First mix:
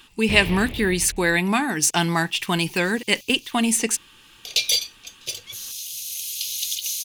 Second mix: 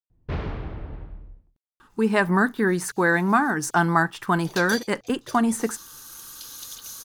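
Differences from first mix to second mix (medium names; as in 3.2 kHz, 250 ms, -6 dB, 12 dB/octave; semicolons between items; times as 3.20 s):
speech: entry +1.80 s; master: add resonant high shelf 1.9 kHz -10.5 dB, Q 3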